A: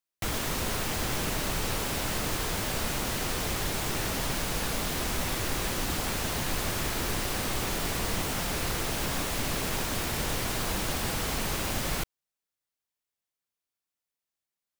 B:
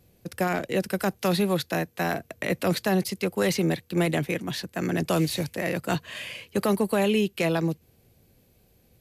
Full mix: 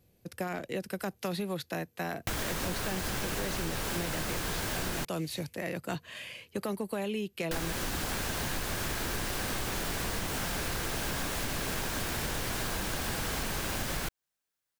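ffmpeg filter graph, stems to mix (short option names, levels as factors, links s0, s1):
-filter_complex "[0:a]equalizer=f=1600:w=8:g=5.5,adelay=2050,volume=1.33,asplit=3[s0][s1][s2];[s0]atrim=end=5.05,asetpts=PTS-STARTPTS,afade=t=out:st=5.046:d=0.004:c=hsin[s3];[s1]atrim=start=5.05:end=7.51,asetpts=PTS-STARTPTS,volume=0[s4];[s2]atrim=start=7.51,asetpts=PTS-STARTPTS,afade=t=in:d=0.004:c=hsin[s5];[s3][s4][s5]concat=n=3:v=0:a=1[s6];[1:a]volume=0.473[s7];[s6][s7]amix=inputs=2:normalize=0,acompressor=threshold=0.0316:ratio=6"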